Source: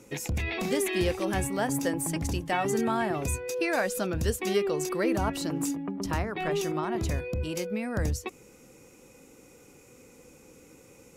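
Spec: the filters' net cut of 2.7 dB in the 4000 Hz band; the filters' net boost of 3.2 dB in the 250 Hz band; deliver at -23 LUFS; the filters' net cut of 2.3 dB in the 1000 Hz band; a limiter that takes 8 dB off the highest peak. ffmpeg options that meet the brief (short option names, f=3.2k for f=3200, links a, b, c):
-af "equalizer=f=250:t=o:g=4.5,equalizer=f=1k:t=o:g=-3.5,equalizer=f=4k:t=o:g=-3.5,volume=7.5dB,alimiter=limit=-14dB:level=0:latency=1"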